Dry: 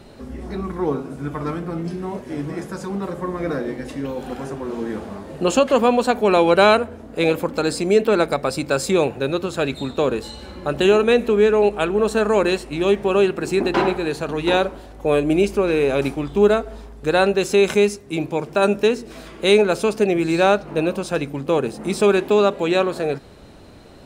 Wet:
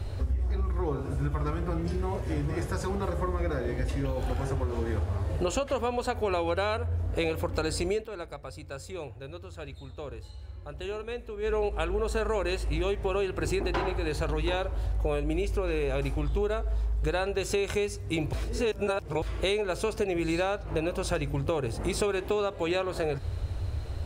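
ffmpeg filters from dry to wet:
-filter_complex "[0:a]asplit=5[s0][s1][s2][s3][s4];[s0]atrim=end=8.09,asetpts=PTS-STARTPTS,afade=t=out:st=7.85:d=0.24:silence=0.105925[s5];[s1]atrim=start=8.09:end=11.42,asetpts=PTS-STARTPTS,volume=0.106[s6];[s2]atrim=start=11.42:end=18.332,asetpts=PTS-STARTPTS,afade=t=in:d=0.24:silence=0.105925[s7];[s3]atrim=start=18.328:end=19.222,asetpts=PTS-STARTPTS,areverse[s8];[s4]atrim=start=19.218[s9];[s5][s6][s7]concat=n=3:v=0:a=1[s10];[s10][s8]acrossfade=d=0.004:c1=hsin:c2=hsin[s11];[s11][s9]acrossfade=d=0.004:c1=hsin:c2=hsin,lowshelf=f=130:t=q:w=3:g=13.5,acompressor=threshold=0.0562:ratio=10"

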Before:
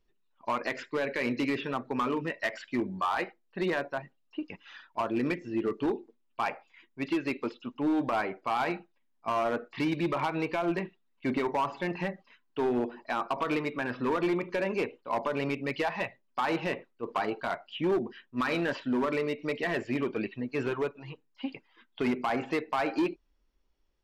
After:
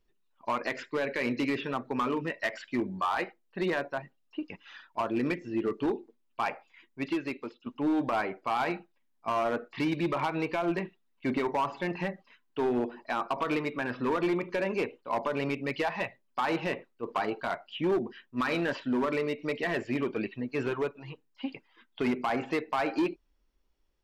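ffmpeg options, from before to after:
-filter_complex "[0:a]asplit=2[s0][s1];[s0]atrim=end=7.66,asetpts=PTS-STARTPTS,afade=t=out:st=7.02:d=0.64:silence=0.266073[s2];[s1]atrim=start=7.66,asetpts=PTS-STARTPTS,afade=t=in:d=0.004:c=hsin:silence=0.266073[s3];[s2][s3]concat=n=2:v=0:a=1"

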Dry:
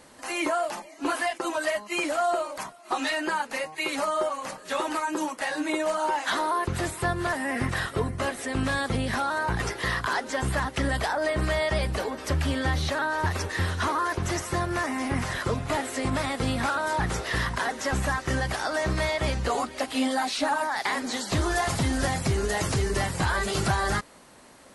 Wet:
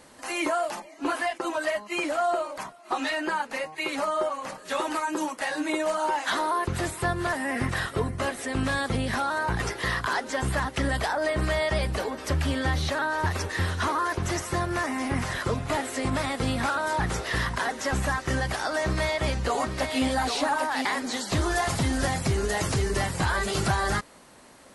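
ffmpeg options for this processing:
-filter_complex "[0:a]asettb=1/sr,asplit=3[s0][s1][s2];[s0]atrim=end=0.804[s3];[s1]atrim=start=0.8:end=4.55,asetpts=PTS-STARTPTS,afade=t=in:d=0.004:c=qsin,afade=t=out:st=3.746:d=0.004:c=qsin,highshelf=f=4600:g=-5.5[s4];[s2]atrim=start=4.546[s5];[s3][s4]acrossfade=d=0.004:c1=hsin:c2=qsin[s6];[s6][s5]acrossfade=d=0.004:c1=qsin:c2=hsin,asettb=1/sr,asplit=3[s7][s8][s9];[s7]atrim=end=18.804[s10];[s8]atrim=start=18.8:end=20.85,asetpts=PTS-STARTPTS,afade=t=in:d=0.004:c=qsin,afade=t=out:st=2.046:d=0.004:c=qsin,aecho=1:1:803:0.473,atrim=end_sample=90405[s11];[s9]atrim=start=20.846[s12];[s10][s11]acrossfade=d=0.004:c1=hsin:c2=qsin[s13];[s13][s12]acrossfade=d=0.004:c1=qsin:c2=hsin"

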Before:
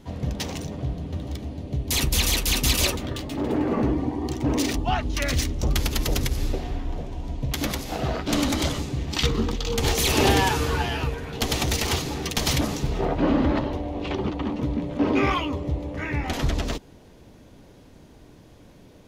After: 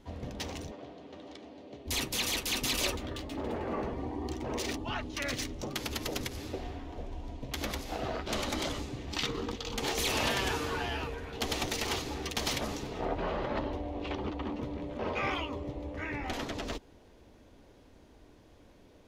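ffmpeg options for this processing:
-filter_complex "[0:a]asettb=1/sr,asplit=3[s0][s1][s2];[s0]atrim=end=0.714[s3];[s1]atrim=start=0.71:end=1.86,asetpts=PTS-STARTPTS,afade=t=in:d=0.004:c=qsin,afade=t=out:st=1.146:d=0.004:c=qsin,highpass=310,lowpass=6200[s4];[s2]atrim=start=1.856[s5];[s3][s4]acrossfade=d=0.004:c1=hsin:c2=qsin[s6];[s6][s5]acrossfade=d=0.004:c1=qsin:c2=hsin,equalizer=f=150:w=1.5:g=-9,afftfilt=real='re*lt(hypot(re,im),0.398)':imag='im*lt(hypot(re,im),0.398)':win_size=1024:overlap=0.75,highshelf=f=6300:g=-6,volume=0.501"

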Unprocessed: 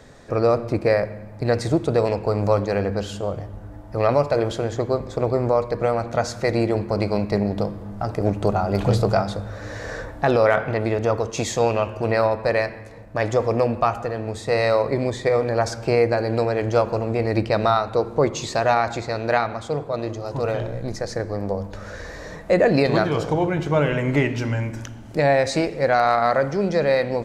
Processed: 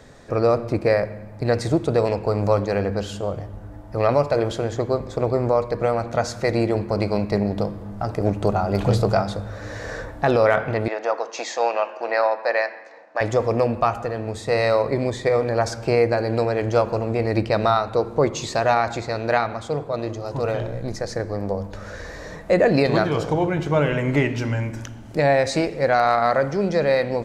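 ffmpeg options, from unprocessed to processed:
-filter_complex "[0:a]asettb=1/sr,asplit=3[s0][s1][s2];[s0]atrim=end=10.884[s3];[s1]atrim=start=10.88:end=13.21,asetpts=PTS-STARTPTS,afade=t=in:d=0.004:c=qsin,afade=t=out:st=2.326:d=0.004:c=qsin,highpass=f=380:w=0.5412,highpass=f=380:w=1.3066,equalizer=f=410:t=q:w=4:g=-9,equalizer=f=800:t=q:w=4:g=4,equalizer=f=1700:t=q:w=4:g=4,equalizer=f=3300:t=q:w=4:g=-5,lowpass=f=6000:w=0.5412,lowpass=f=6000:w=1.3066[s4];[s2]atrim=start=13.206[s5];[s3][s4]acrossfade=d=0.004:c1=hsin:c2=qsin[s6];[s6][s5]acrossfade=d=0.004:c1=qsin:c2=hsin"

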